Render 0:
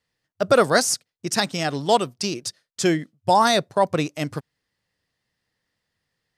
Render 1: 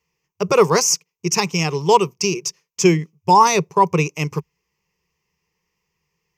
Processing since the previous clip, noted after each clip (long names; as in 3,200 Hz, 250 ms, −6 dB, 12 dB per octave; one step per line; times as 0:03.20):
EQ curve with evenly spaced ripples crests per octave 0.77, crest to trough 17 dB
level +1 dB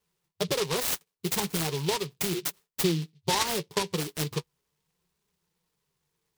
downward compressor 12 to 1, threshold −20 dBFS, peak gain reduction 13.5 dB
flanger 0.38 Hz, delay 4.7 ms, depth 5.6 ms, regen +43%
short delay modulated by noise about 3,500 Hz, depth 0.15 ms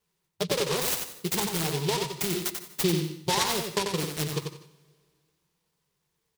repeating echo 91 ms, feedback 18%, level −5.5 dB
on a send at −15 dB: convolution reverb, pre-delay 145 ms